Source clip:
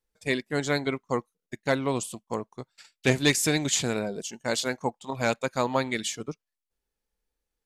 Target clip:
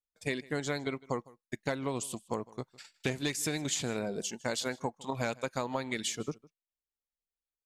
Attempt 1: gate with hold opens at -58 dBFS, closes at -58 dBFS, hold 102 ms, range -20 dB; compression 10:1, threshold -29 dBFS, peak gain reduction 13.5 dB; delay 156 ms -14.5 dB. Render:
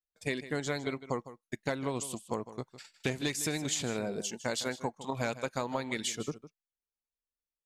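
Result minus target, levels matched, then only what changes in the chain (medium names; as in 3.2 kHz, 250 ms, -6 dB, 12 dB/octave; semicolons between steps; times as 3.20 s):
echo-to-direct +8 dB
change: delay 156 ms -22.5 dB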